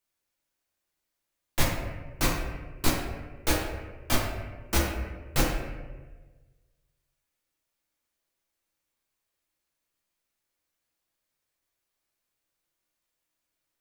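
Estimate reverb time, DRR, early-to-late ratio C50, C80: 1.3 s, −4.5 dB, 2.0 dB, 4.5 dB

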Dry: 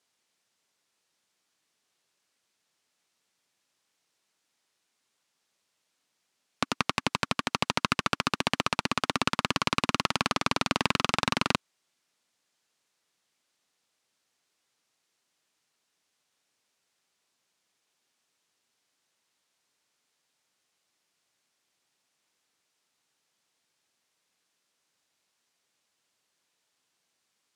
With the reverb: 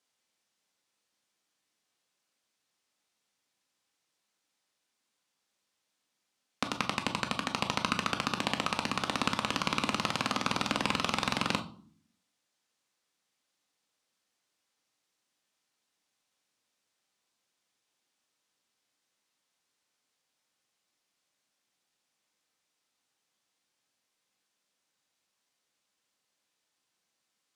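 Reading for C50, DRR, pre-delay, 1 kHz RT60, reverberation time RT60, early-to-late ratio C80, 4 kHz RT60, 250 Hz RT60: 13.5 dB, 5.5 dB, 4 ms, 0.45 s, 0.50 s, 18.5 dB, 0.35 s, 0.80 s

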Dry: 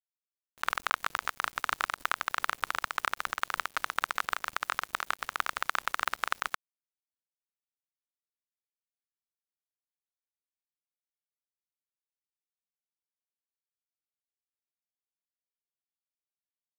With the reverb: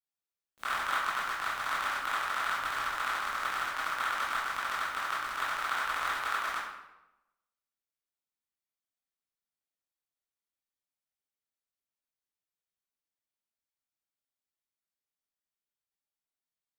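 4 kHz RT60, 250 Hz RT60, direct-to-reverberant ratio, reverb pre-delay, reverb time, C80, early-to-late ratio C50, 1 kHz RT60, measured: 0.70 s, 1.0 s, −10.0 dB, 15 ms, 0.95 s, 3.5 dB, 0.0 dB, 0.90 s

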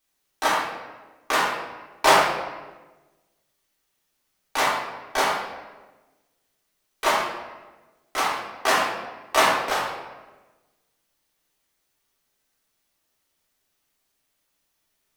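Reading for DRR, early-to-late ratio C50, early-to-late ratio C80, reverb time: −6.5 dB, 1.5 dB, 4.0 dB, 1.2 s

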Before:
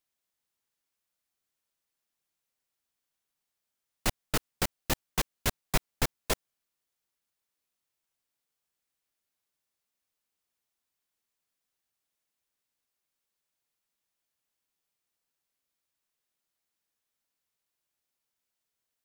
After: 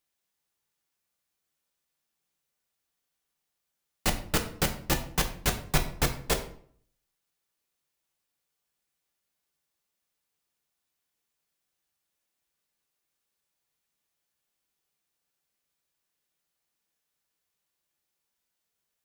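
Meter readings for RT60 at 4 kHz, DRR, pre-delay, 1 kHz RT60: 0.40 s, 4.0 dB, 3 ms, 0.55 s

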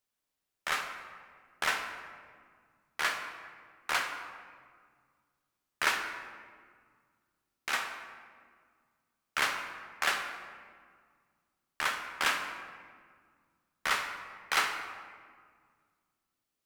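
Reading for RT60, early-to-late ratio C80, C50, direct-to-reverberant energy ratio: 1.8 s, 7.5 dB, 6.5 dB, 4.0 dB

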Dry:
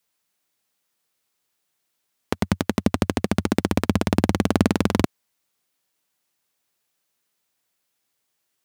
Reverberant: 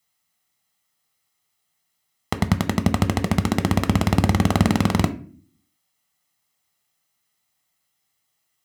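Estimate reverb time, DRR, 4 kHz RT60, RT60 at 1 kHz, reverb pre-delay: 0.45 s, 9.0 dB, 0.30 s, 0.40 s, 5 ms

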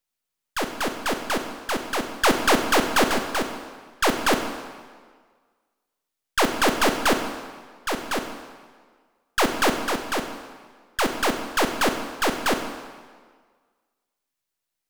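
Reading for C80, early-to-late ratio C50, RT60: 8.5 dB, 7.0 dB, 1.7 s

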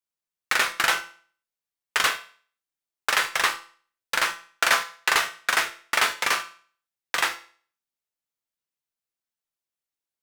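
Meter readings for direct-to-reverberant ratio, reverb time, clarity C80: 7.0 dB, 0.45 s, 18.0 dB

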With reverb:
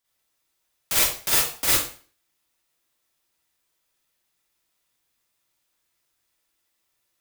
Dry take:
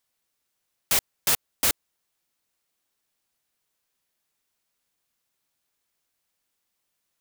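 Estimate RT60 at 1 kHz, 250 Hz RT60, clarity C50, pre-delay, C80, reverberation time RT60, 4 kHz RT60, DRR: 0.40 s, 0.40 s, −2.5 dB, 38 ms, 6.0 dB, 0.40 s, 0.40 s, −7.0 dB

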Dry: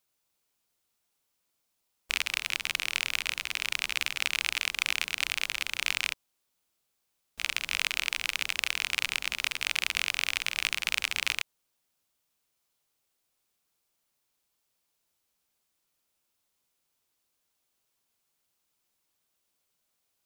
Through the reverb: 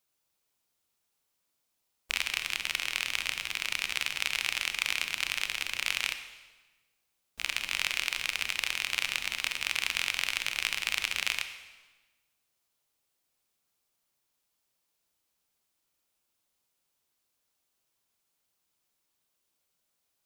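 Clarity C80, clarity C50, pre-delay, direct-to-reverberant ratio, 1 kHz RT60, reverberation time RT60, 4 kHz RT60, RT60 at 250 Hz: 11.0 dB, 10.0 dB, 26 ms, 8.5 dB, 1.2 s, 1.2 s, 1.1 s, 1.4 s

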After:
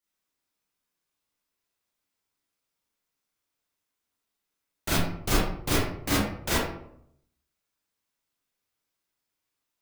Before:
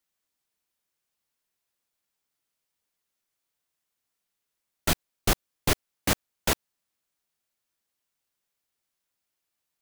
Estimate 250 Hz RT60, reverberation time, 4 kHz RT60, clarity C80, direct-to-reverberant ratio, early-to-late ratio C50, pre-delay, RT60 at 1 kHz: 0.85 s, 0.70 s, 0.40 s, 3.5 dB, −8.0 dB, −1.0 dB, 28 ms, 0.65 s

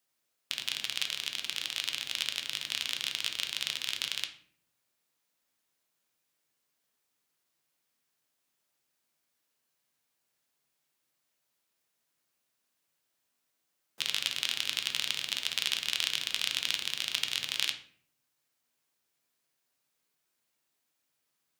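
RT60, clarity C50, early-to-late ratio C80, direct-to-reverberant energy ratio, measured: 0.55 s, 11.0 dB, 15.0 dB, 5.0 dB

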